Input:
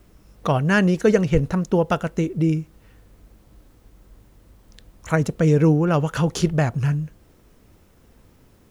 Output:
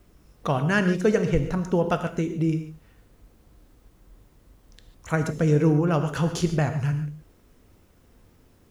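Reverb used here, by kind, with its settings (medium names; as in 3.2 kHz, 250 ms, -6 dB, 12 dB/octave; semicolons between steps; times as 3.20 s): gated-style reverb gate 170 ms flat, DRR 7.5 dB; trim -4 dB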